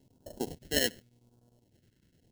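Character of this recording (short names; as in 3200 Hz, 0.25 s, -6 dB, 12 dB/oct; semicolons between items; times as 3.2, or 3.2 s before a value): aliases and images of a low sample rate 1200 Hz, jitter 0%; chopped level 9.9 Hz, depth 60%, duty 80%; phasing stages 2, 0.88 Hz, lowest notch 750–2000 Hz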